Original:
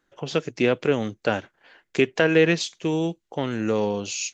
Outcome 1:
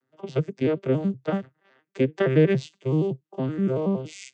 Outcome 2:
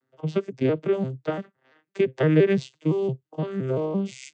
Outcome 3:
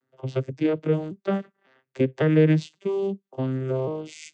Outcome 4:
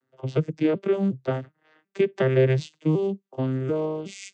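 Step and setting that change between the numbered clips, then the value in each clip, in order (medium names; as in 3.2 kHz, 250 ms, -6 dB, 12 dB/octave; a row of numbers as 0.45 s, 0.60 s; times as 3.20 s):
vocoder on a broken chord, a note every: 94 ms, 171 ms, 552 ms, 368 ms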